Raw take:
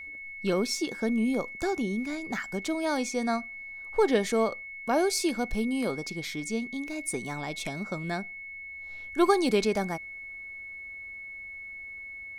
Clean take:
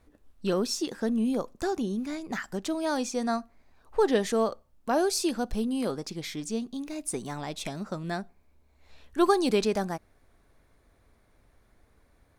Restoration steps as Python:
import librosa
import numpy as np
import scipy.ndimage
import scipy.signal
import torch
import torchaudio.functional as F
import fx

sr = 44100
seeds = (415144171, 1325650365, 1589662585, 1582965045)

y = fx.notch(x, sr, hz=2200.0, q=30.0)